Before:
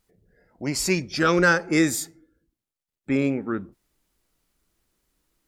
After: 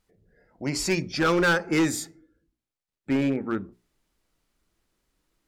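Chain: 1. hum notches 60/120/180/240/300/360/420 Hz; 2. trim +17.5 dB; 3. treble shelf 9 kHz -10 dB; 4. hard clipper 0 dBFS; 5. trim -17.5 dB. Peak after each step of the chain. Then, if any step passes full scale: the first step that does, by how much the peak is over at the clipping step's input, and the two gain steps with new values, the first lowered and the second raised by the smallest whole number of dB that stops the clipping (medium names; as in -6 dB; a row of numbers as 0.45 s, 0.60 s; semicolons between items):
-7.0 dBFS, +10.5 dBFS, +10.0 dBFS, 0.0 dBFS, -17.5 dBFS; step 2, 10.0 dB; step 2 +7.5 dB, step 5 -7.5 dB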